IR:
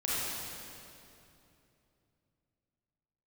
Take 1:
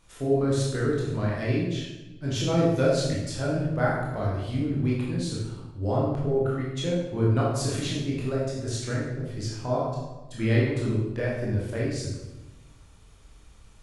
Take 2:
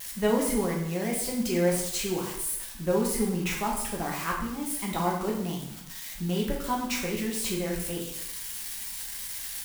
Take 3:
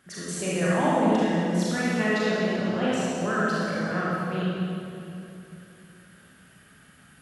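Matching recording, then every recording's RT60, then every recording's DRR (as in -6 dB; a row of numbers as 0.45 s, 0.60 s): 3; 1.1 s, 0.75 s, 2.8 s; -6.0 dB, -2.5 dB, -9.0 dB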